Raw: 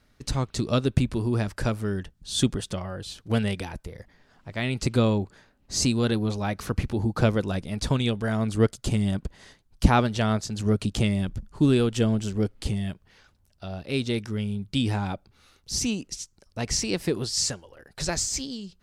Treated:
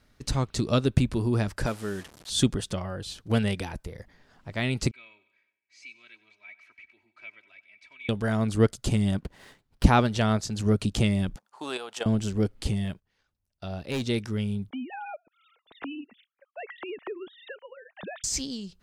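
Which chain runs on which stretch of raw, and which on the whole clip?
1.66–2.3 delta modulation 64 kbps, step -39.5 dBFS + HPF 130 Hz 6 dB/oct + low shelf 230 Hz -7 dB
4.91–8.09 band-pass 2300 Hz, Q 20 + comb 3.1 ms, depth 76% + feedback echo 93 ms, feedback 55%, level -17 dB
9.18–9.84 low shelf 74 Hz -9.5 dB + running maximum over 5 samples
11.36–12.06 level quantiser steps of 10 dB + resonant high-pass 790 Hz, resonance Q 2.5
12.85–14.04 gate -54 dBFS, range -18 dB + hard clip -25.5 dBFS
14.7–18.24 sine-wave speech + compressor 5:1, threshold -34 dBFS
whole clip: dry

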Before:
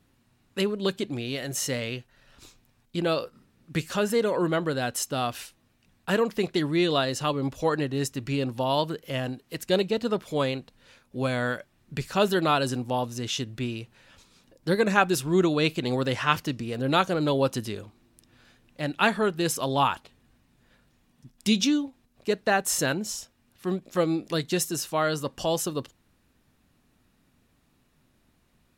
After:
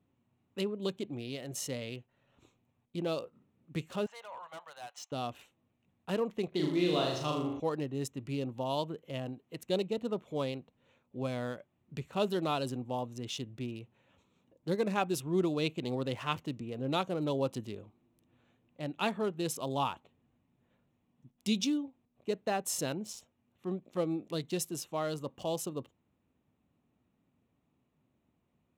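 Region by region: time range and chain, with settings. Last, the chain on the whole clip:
4.06–5.12 elliptic band-pass 770–6500 Hz + hard clip -30 dBFS
6.48–7.6 brick-wall FIR low-pass 6900 Hz + flutter echo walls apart 6.7 m, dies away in 0.8 s
whole clip: Wiener smoothing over 9 samples; HPF 83 Hz; bell 1600 Hz -9.5 dB 0.67 oct; gain -7.5 dB

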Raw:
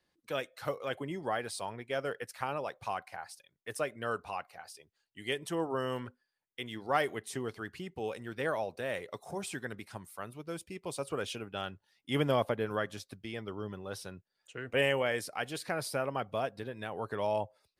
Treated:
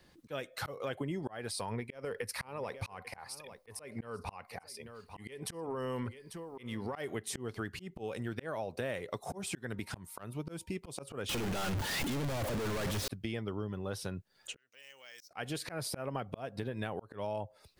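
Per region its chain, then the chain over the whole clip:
1.51–6.96 ripple EQ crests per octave 0.89, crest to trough 6 dB + compressor 12:1, threshold -37 dBFS + echo 0.844 s -19 dB
9.75–10.73 hard clip -27.5 dBFS + whine 930 Hz -73 dBFS
11.29–13.08 infinite clipping + high shelf 4300 Hz -9.5 dB + sample leveller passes 5
14.56–15.31 compressor 4:1, threshold -33 dBFS + band-pass 5800 Hz, Q 6 + careless resampling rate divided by 2×, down none, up hold
whole clip: low shelf 260 Hz +7.5 dB; auto swell 0.508 s; compressor 6:1, threshold -48 dBFS; gain +13 dB

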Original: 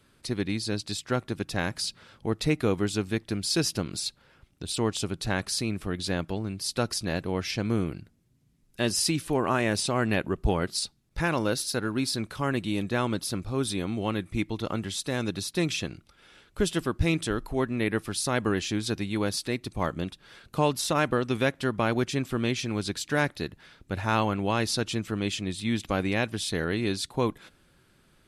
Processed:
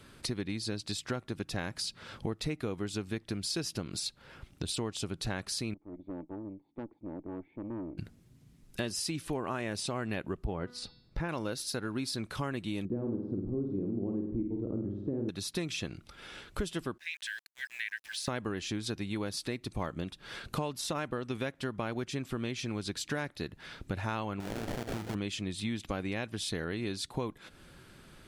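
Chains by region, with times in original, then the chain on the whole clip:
5.74–7.98 vocal tract filter u + tilt +3.5 dB/oct + tube stage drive 41 dB, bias 0.6
10.44–11.29 LPF 1400 Hz 6 dB/oct + de-hum 245.7 Hz, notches 21
12.85–15.29 synth low-pass 350 Hz, resonance Q 2.1 + flutter echo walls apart 8.7 m, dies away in 0.67 s
16.98–18.28 brick-wall FIR high-pass 1500 Hz + tilt -4.5 dB/oct + sample gate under -55 dBFS
24.4–25.15 compressor, threshold -31 dBFS + sample-rate reducer 1100 Hz, jitter 20% + doubler 47 ms -11.5 dB
whole clip: compressor 5:1, threshold -41 dBFS; high shelf 9800 Hz -4 dB; gain +7.5 dB

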